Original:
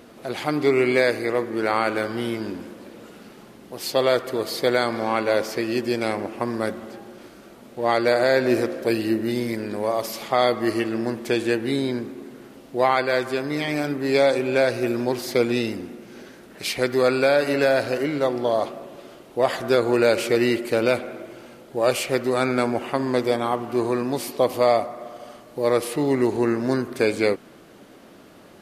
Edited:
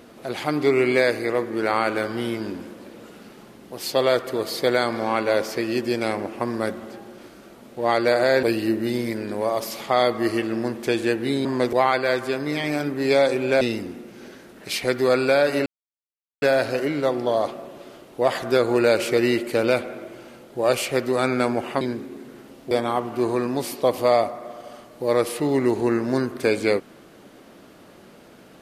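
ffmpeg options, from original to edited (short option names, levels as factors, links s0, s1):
-filter_complex "[0:a]asplit=8[s0][s1][s2][s3][s4][s5][s6][s7];[s0]atrim=end=8.432[s8];[s1]atrim=start=8.848:end=11.872[s9];[s2]atrim=start=22.988:end=23.272[s10];[s3]atrim=start=12.768:end=14.652[s11];[s4]atrim=start=15.548:end=17.6,asetpts=PTS-STARTPTS,afade=t=out:st=2.048:d=0.004:c=hsin,apad=pad_dur=0.76[s12];[s5]atrim=start=17.6:end=22.992,asetpts=PTS-STARTPTS,afade=t=in:d=0.004:c=hsin[s13];[s6]atrim=start=11.868:end=12.772[s14];[s7]atrim=start=23.268[s15];[s8][s9]acrossfade=d=0.004:c1=hsin:c2=hsin[s16];[s16][s10]acrossfade=d=0.004:c1=hsin:c2=hsin[s17];[s17][s11]acrossfade=d=0.004:c1=hsin:c2=hsin[s18];[s12][s13]concat=n=2:v=0:a=1[s19];[s18][s19]acrossfade=d=0.004:c1=hsin:c2=hsin[s20];[s20][s14]acrossfade=d=0.004:c1=hsin:c2=hsin[s21];[s21][s15]acrossfade=d=0.004:c1=hsin:c2=hsin"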